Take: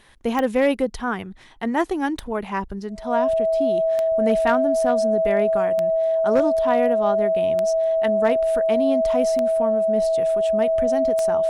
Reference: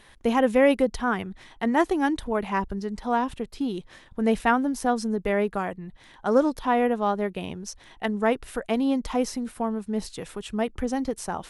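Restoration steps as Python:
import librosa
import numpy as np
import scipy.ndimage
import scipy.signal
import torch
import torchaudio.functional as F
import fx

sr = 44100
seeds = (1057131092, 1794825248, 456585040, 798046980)

y = fx.fix_declip(x, sr, threshold_db=-10.0)
y = fx.fix_declick_ar(y, sr, threshold=10.0)
y = fx.notch(y, sr, hz=650.0, q=30.0)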